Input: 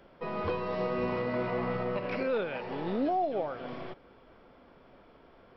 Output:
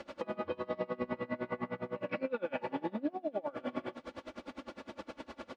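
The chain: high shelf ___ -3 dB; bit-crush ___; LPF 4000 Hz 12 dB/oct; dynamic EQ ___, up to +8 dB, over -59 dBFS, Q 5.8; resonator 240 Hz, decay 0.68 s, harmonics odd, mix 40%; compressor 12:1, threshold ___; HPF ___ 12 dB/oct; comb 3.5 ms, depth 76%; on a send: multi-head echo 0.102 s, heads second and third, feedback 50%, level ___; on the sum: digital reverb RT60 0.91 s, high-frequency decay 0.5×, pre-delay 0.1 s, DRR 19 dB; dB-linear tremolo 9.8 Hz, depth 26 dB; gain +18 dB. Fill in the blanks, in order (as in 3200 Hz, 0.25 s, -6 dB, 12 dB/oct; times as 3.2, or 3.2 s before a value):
2000 Hz, 10-bit, 130 Hz, -48 dBFS, 93 Hz, -21.5 dB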